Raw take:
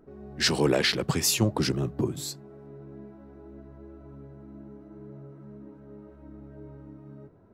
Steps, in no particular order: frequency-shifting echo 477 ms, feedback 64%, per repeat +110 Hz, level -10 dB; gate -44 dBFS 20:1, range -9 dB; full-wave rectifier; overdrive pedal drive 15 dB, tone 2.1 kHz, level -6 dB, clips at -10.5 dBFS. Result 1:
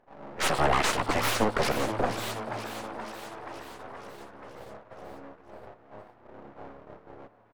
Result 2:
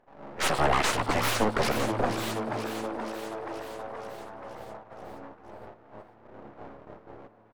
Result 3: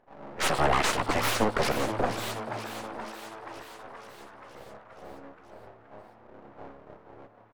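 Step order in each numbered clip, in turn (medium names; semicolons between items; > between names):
full-wave rectifier > overdrive pedal > frequency-shifting echo > gate; full-wave rectifier > frequency-shifting echo > gate > overdrive pedal; full-wave rectifier > overdrive pedal > gate > frequency-shifting echo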